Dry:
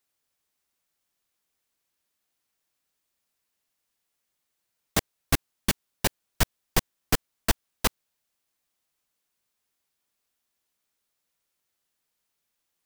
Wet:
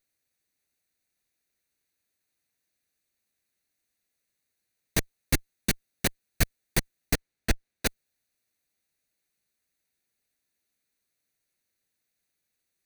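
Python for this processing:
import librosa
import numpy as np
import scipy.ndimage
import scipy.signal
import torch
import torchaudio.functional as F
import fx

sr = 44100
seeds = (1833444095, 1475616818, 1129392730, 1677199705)

y = fx.lower_of_two(x, sr, delay_ms=0.47)
y = fx.high_shelf(y, sr, hz=6200.0, db=-9.0, at=(7.14, 7.86))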